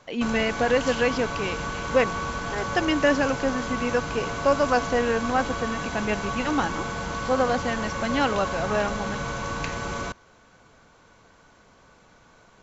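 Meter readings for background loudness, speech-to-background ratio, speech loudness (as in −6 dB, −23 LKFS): −30.5 LKFS, 4.5 dB, −26.0 LKFS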